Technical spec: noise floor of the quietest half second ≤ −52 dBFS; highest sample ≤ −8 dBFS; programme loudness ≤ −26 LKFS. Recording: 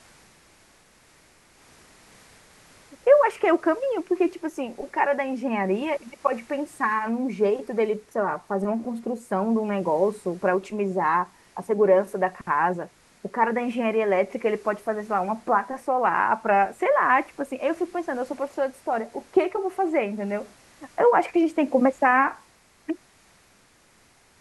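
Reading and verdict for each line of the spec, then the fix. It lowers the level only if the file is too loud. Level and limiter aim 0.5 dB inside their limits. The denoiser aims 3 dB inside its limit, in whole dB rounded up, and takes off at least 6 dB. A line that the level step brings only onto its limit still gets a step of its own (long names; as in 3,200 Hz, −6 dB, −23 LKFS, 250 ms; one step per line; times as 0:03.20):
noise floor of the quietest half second −58 dBFS: in spec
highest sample −6.5 dBFS: out of spec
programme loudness −24.5 LKFS: out of spec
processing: level −2 dB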